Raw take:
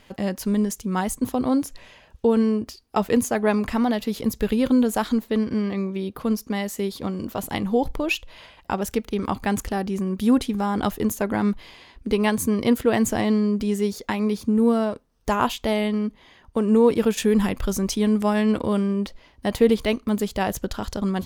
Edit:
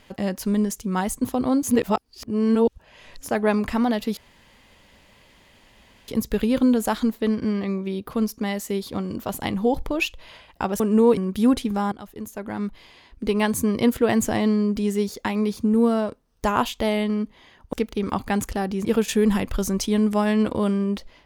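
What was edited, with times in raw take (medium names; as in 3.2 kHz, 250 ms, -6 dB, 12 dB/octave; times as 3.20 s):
1.63–3.29 s: reverse
4.17 s: insert room tone 1.91 s
8.89–10.01 s: swap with 16.57–16.94 s
10.76–12.37 s: fade in, from -20 dB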